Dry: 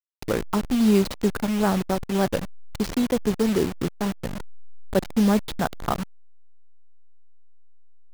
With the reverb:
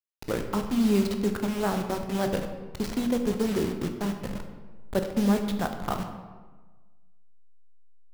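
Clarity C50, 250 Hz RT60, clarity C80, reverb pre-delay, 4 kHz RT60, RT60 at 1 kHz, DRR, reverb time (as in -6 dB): 7.5 dB, 1.4 s, 9.0 dB, 14 ms, 0.80 s, 1.3 s, 5.0 dB, 1.3 s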